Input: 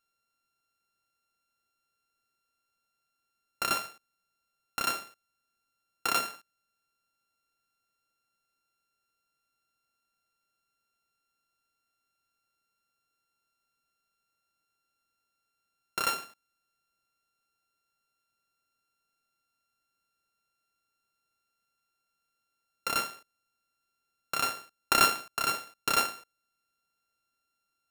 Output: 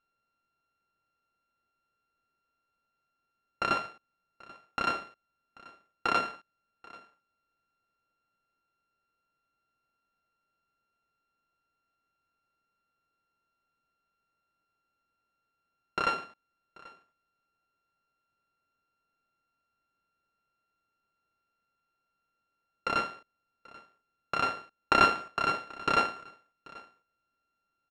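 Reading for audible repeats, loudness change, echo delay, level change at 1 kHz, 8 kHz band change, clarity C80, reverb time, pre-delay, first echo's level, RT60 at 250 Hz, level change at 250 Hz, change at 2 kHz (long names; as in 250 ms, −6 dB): 1, 0.0 dB, 786 ms, +2.5 dB, −16.0 dB, no reverb audible, no reverb audible, no reverb audible, −22.5 dB, no reverb audible, +4.5 dB, +0.5 dB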